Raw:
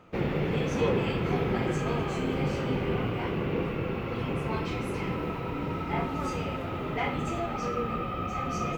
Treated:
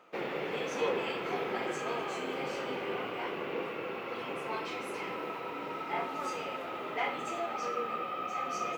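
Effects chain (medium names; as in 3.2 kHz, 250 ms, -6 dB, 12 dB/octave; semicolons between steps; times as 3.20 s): high-pass 450 Hz 12 dB/octave; trim -1.5 dB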